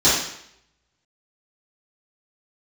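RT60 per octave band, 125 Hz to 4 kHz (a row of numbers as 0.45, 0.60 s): 0.70, 0.70, 0.70, 0.70, 0.75, 0.70 s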